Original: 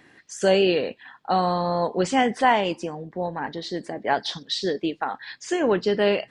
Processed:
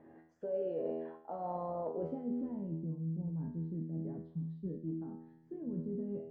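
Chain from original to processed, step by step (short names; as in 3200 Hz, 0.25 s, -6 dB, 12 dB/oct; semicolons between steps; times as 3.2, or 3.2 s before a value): limiter -18.5 dBFS, peak gain reduction 12 dB; low-pass sweep 660 Hz -> 190 Hz, 1.9–2.58; resonator 81 Hz, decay 0.84 s, harmonics all, mix 90%; reverse; compressor 4:1, threshold -45 dBFS, peak gain reduction 15 dB; reverse; notch 750 Hz, Q 12; gain +9 dB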